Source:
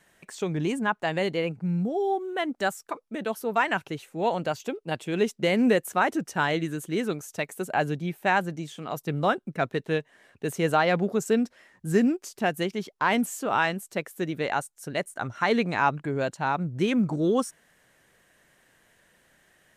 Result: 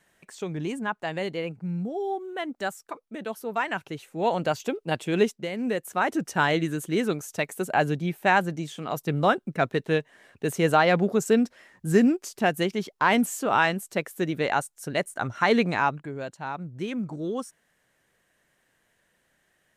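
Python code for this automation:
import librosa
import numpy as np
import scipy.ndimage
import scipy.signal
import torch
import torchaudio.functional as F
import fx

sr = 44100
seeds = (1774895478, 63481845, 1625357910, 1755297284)

y = fx.gain(x, sr, db=fx.line((3.72, -3.5), (4.51, 3.0), (5.22, 3.0), (5.5, -9.5), (6.27, 2.5), (15.69, 2.5), (16.14, -7.0)))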